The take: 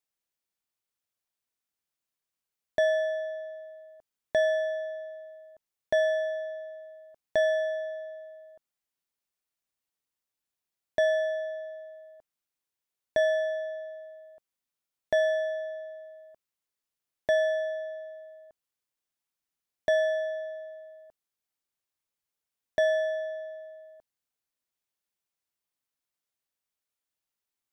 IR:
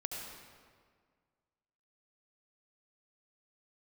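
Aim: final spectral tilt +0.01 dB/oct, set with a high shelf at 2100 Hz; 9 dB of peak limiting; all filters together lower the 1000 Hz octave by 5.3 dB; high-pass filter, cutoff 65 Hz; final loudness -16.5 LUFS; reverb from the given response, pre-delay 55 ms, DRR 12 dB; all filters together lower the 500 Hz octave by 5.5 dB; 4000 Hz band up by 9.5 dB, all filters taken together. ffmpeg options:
-filter_complex "[0:a]highpass=65,equalizer=f=500:t=o:g=-6.5,equalizer=f=1k:t=o:g=-4.5,highshelf=f=2.1k:g=5,equalizer=f=4k:t=o:g=7.5,alimiter=level_in=2dB:limit=-24dB:level=0:latency=1,volume=-2dB,asplit=2[a][b];[1:a]atrim=start_sample=2205,adelay=55[c];[b][c]afir=irnorm=-1:irlink=0,volume=-13dB[d];[a][d]amix=inputs=2:normalize=0,volume=19.5dB"

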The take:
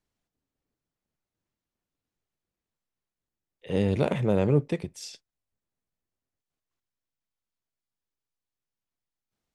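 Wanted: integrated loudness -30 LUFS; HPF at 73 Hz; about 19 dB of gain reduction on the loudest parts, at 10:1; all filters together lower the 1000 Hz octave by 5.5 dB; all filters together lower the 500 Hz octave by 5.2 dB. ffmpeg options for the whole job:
-af "highpass=73,equalizer=f=500:t=o:g=-5,equalizer=f=1k:t=o:g=-5.5,acompressor=threshold=-39dB:ratio=10,volume=14dB"

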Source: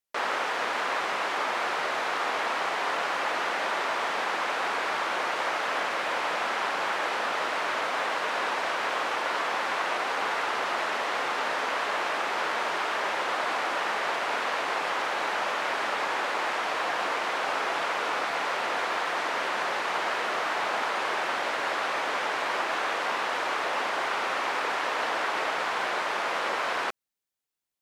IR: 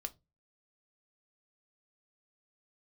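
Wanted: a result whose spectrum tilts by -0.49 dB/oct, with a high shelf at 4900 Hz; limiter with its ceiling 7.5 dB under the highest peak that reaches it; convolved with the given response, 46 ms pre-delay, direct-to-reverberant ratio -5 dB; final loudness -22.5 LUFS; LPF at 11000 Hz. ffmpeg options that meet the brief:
-filter_complex "[0:a]lowpass=11k,highshelf=f=4.9k:g=5,alimiter=limit=-21.5dB:level=0:latency=1,asplit=2[a][b];[1:a]atrim=start_sample=2205,adelay=46[c];[b][c]afir=irnorm=-1:irlink=0,volume=7dB[d];[a][d]amix=inputs=2:normalize=0,volume=1dB"

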